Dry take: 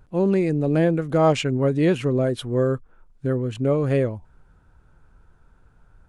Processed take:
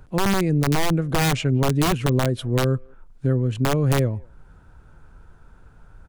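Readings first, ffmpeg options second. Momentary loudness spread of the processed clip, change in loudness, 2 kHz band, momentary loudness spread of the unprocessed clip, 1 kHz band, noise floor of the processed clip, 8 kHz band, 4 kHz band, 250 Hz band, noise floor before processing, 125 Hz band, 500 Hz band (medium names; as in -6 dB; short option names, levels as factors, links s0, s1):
4 LU, 0.0 dB, +5.0 dB, 7 LU, +3.0 dB, -51 dBFS, +11.0 dB, +6.0 dB, -1.0 dB, -58 dBFS, +3.5 dB, -4.5 dB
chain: -filter_complex "[0:a]asplit=2[s0][s1];[s1]adelay=190,highpass=300,lowpass=3400,asoftclip=type=hard:threshold=0.168,volume=0.0316[s2];[s0][s2]amix=inputs=2:normalize=0,aeval=exprs='(mod(4.47*val(0)+1,2)-1)/4.47':c=same,acrossover=split=190[s3][s4];[s4]acompressor=threshold=0.00562:ratio=1.5[s5];[s3][s5]amix=inputs=2:normalize=0,volume=2.11"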